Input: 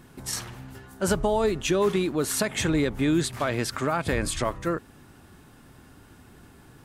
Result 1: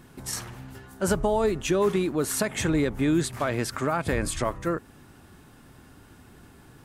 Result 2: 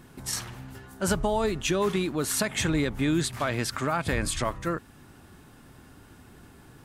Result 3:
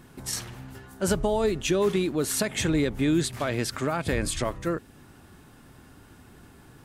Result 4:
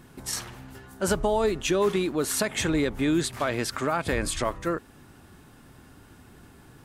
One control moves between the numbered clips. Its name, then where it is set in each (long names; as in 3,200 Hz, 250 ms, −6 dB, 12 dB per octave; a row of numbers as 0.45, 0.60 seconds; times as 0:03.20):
dynamic equaliser, frequency: 3,700, 430, 1,100, 130 Hertz